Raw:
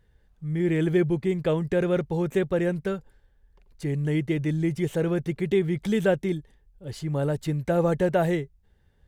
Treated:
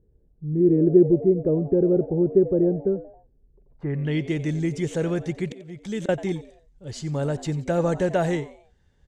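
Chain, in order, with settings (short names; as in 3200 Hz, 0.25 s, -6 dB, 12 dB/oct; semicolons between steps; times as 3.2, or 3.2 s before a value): 5.44–6.09 auto swell 0.777 s; low-pass sweep 380 Hz -> 6900 Hz, 3.59–4.27; frequency-shifting echo 90 ms, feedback 38%, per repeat +110 Hz, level -17 dB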